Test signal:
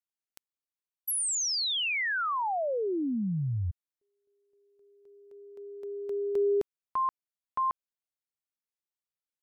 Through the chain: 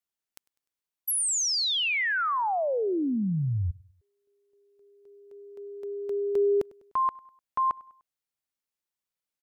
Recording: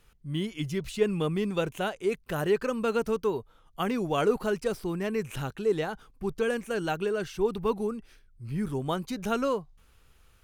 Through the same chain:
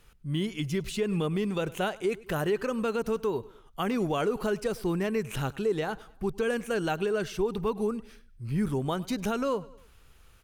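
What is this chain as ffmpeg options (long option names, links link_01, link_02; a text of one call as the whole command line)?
ffmpeg -i in.wav -af "aecho=1:1:100|200|300:0.0668|0.0307|0.0141,alimiter=limit=-22dB:level=0:latency=1:release=146,volume=3dB" out.wav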